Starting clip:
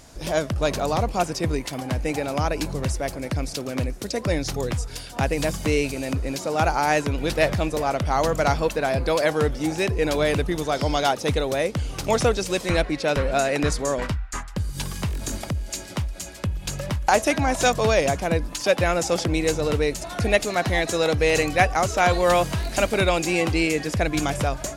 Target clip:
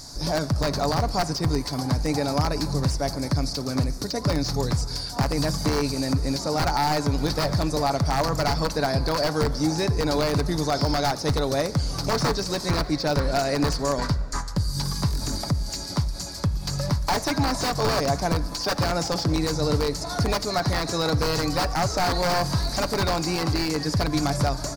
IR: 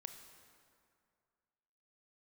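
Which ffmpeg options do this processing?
-filter_complex "[0:a]aeval=exprs='(mod(4.22*val(0)+1,2)-1)/4.22':c=same,firequalizer=gain_entry='entry(160,0);entry(490,-6);entry(920,0);entry(2900,-13);entry(4500,13);entry(7300,2)':delay=0.05:min_phase=1,asplit=2[a][b];[b]acompressor=threshold=-25dB:ratio=6,volume=-0.5dB[c];[a][c]amix=inputs=2:normalize=0,volume=14dB,asoftclip=hard,volume=-14dB,acrossover=split=3200[d][e];[e]acompressor=threshold=-31dB:ratio=4:attack=1:release=60[f];[d][f]amix=inputs=2:normalize=0,asplit=2[g][h];[1:a]atrim=start_sample=2205,adelay=7[i];[h][i]afir=irnorm=-1:irlink=0,volume=-4.5dB[j];[g][j]amix=inputs=2:normalize=0,volume=-1.5dB"

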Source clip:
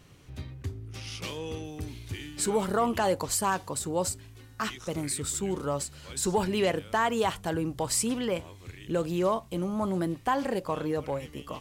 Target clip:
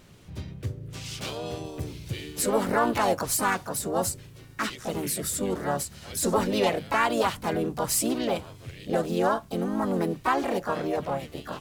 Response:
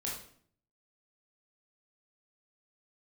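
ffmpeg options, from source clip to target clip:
-filter_complex "[0:a]bandreject=f=51.53:t=h:w=4,bandreject=f=103.06:t=h:w=4,bandreject=f=154.59:t=h:w=4,asplit=3[a][b][c];[b]asetrate=55563,aresample=44100,atempo=0.793701,volume=-3dB[d];[c]asetrate=66075,aresample=44100,atempo=0.66742,volume=-6dB[e];[a][d][e]amix=inputs=3:normalize=0"

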